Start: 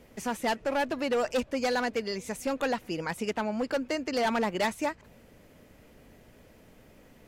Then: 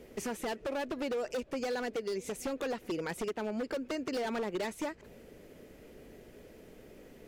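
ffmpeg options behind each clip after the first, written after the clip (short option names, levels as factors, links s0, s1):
-af "equalizer=f=100:t=o:w=0.67:g=-4,equalizer=f=400:t=o:w=0.67:g=9,equalizer=f=1000:t=o:w=0.67:g=-4,acompressor=threshold=0.0282:ratio=6,aeval=exprs='0.0376*(abs(mod(val(0)/0.0376+3,4)-2)-1)':c=same"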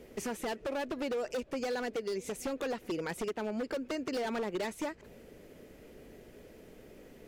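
-af anull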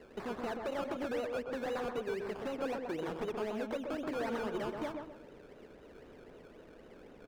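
-filter_complex "[0:a]acrusher=samples=18:mix=1:aa=0.000001:lfo=1:lforange=10.8:lforate=3.9,asplit=2[s0][s1];[s1]highpass=f=720:p=1,volume=1.78,asoftclip=type=tanh:threshold=0.0376[s2];[s0][s2]amix=inputs=2:normalize=0,lowpass=f=1400:p=1,volume=0.501,asplit=2[s3][s4];[s4]adelay=128,lowpass=f=1500:p=1,volume=0.668,asplit=2[s5][s6];[s6]adelay=128,lowpass=f=1500:p=1,volume=0.36,asplit=2[s7][s8];[s8]adelay=128,lowpass=f=1500:p=1,volume=0.36,asplit=2[s9][s10];[s10]adelay=128,lowpass=f=1500:p=1,volume=0.36,asplit=2[s11][s12];[s12]adelay=128,lowpass=f=1500:p=1,volume=0.36[s13];[s3][s5][s7][s9][s11][s13]amix=inputs=6:normalize=0"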